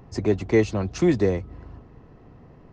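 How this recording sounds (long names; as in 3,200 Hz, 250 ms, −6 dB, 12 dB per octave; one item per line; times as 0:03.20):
background noise floor −50 dBFS
spectral slope −6.5 dB per octave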